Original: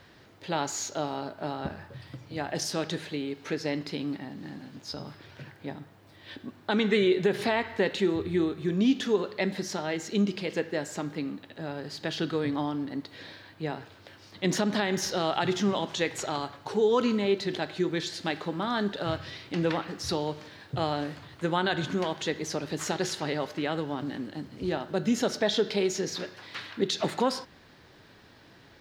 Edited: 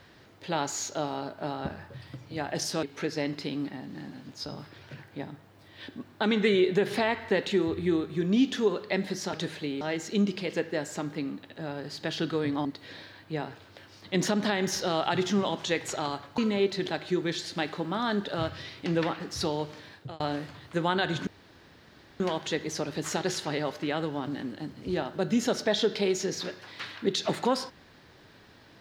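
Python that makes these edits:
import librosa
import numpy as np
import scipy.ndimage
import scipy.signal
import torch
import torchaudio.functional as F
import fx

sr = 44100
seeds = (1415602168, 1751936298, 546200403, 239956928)

y = fx.edit(x, sr, fx.move(start_s=2.83, length_s=0.48, to_s=9.81),
    fx.cut(start_s=12.65, length_s=0.3),
    fx.cut(start_s=16.68, length_s=0.38),
    fx.fade_out_span(start_s=20.57, length_s=0.31),
    fx.insert_room_tone(at_s=21.95, length_s=0.93), tone=tone)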